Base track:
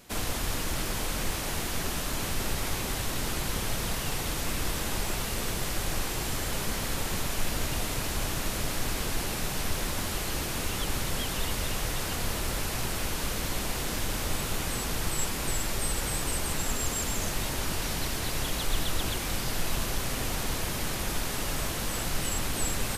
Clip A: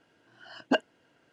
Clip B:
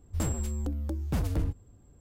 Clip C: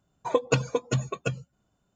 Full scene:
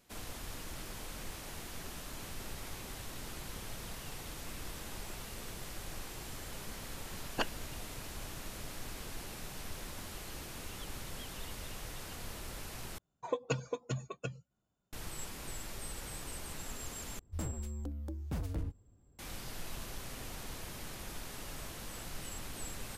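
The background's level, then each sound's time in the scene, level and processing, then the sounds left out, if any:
base track -13.5 dB
6.67 s: add A -9.5 dB + spectral peaks clipped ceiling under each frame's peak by 22 dB
12.98 s: replace with C -11 dB
17.19 s: replace with B -8.5 dB

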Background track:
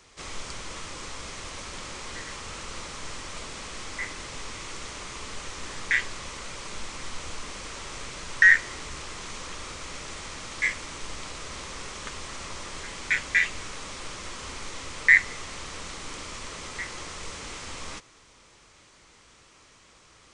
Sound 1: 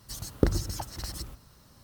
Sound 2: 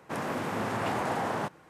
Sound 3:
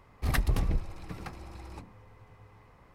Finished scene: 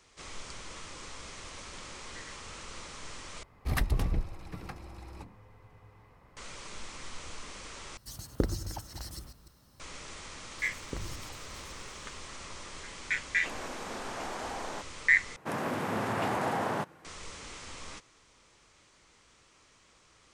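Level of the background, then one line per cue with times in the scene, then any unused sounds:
background track -6.5 dB
3.43 s: replace with 3 -1.5 dB
7.97 s: replace with 1 -5.5 dB + chunks repeated in reverse 151 ms, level -11.5 dB
10.50 s: add 1 -17.5 dB + decay stretcher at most 46 dB/s
13.34 s: add 2 -8 dB + high-pass 260 Hz
15.36 s: replace with 2 -0.5 dB

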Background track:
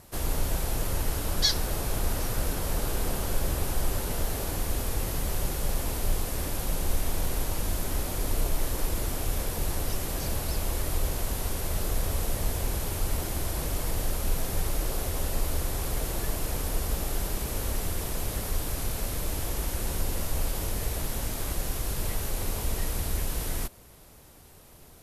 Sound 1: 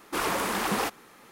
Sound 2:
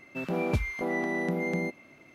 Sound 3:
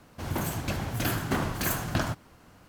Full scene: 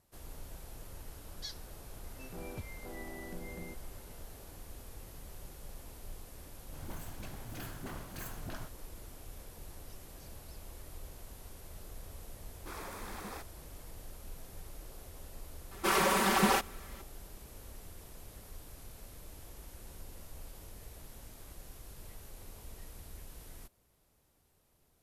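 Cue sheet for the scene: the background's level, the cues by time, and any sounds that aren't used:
background track -19.5 dB
2.04 s: add 2 -17 dB
6.51 s: add 3 -16.5 dB + phase dispersion highs, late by 41 ms, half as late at 430 Hz
12.53 s: add 1 -17.5 dB + band-stop 2.9 kHz, Q 6.5
15.71 s: add 1 -2.5 dB + comb 5.2 ms, depth 92%

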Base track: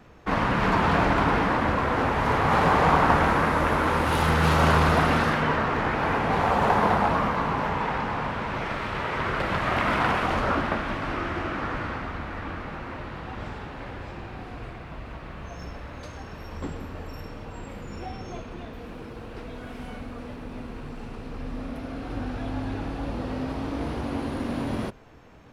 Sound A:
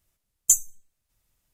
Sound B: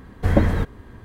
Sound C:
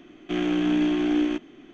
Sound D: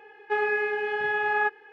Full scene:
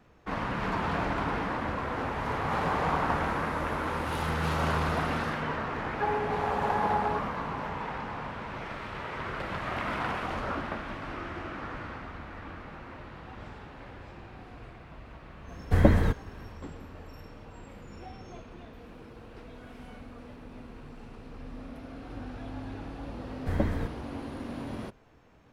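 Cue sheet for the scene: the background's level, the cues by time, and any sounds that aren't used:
base track -8.5 dB
5.70 s: add D -9 dB + touch-sensitive low-pass 630–2300 Hz down, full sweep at -21 dBFS
15.48 s: add B -3 dB
23.23 s: add B -11 dB
not used: A, C

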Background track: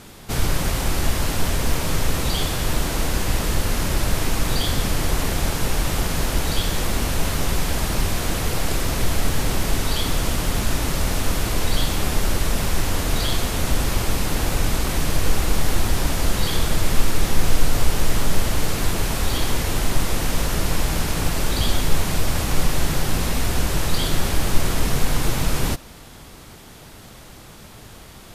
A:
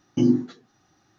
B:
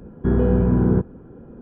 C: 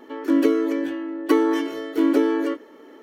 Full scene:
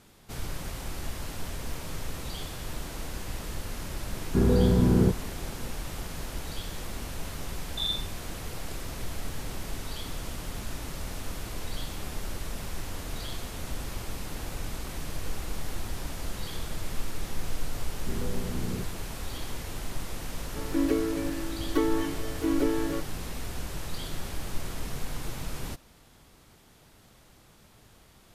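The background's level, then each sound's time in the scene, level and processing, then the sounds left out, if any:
background track -14.5 dB
4.10 s: add B -4 dB
7.60 s: add A -13 dB + frequency inversion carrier 3.8 kHz
17.82 s: add B -17.5 dB
20.46 s: add C -8 dB

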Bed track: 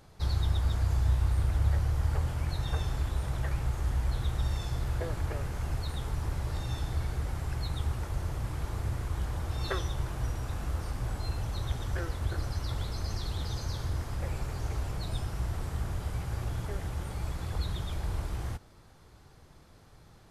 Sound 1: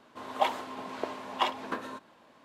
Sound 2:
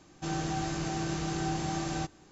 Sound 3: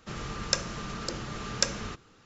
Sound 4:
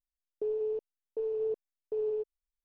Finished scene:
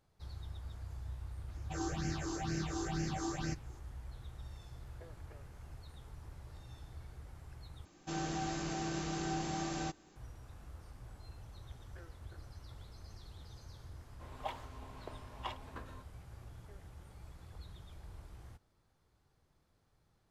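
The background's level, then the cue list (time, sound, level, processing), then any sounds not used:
bed track -18 dB
1.48 s: add 2 -2.5 dB + phase shifter stages 6, 2.1 Hz, lowest notch 150–1000 Hz
7.85 s: replace with 2 -4.5 dB + peaking EQ 110 Hz -5.5 dB 0.84 oct
14.04 s: add 1 -14.5 dB
not used: 3, 4

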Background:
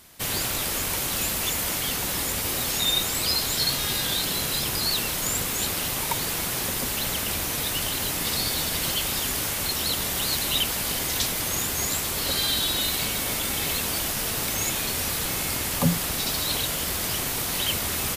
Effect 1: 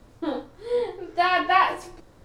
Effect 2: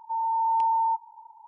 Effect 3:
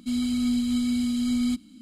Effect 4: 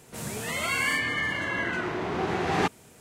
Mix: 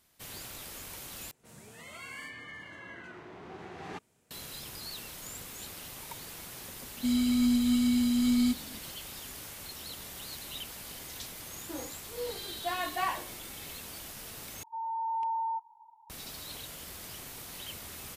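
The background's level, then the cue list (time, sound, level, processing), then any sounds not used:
background -17 dB
1.31 s: replace with 4 -17.5 dB
6.97 s: add 3 -1 dB
11.47 s: add 1 -13 dB
14.63 s: replace with 2 -8.5 dB

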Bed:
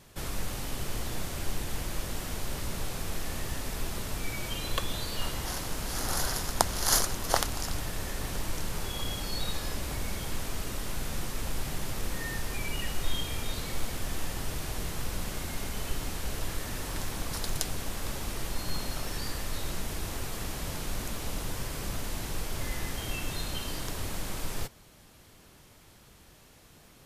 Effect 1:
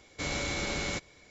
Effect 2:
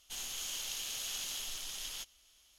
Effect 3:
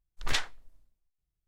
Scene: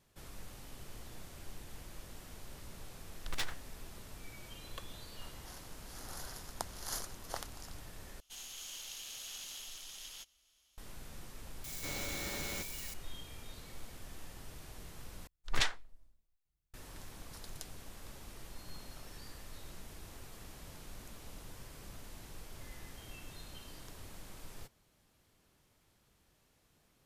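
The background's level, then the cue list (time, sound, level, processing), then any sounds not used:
bed -15.5 dB
3.05 s: add 3 -17 dB + waveshaping leveller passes 5
8.20 s: replace with 2 -6.5 dB
11.64 s: add 1 -9 dB + zero-crossing glitches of -27.5 dBFS
15.27 s: replace with 3 -2 dB

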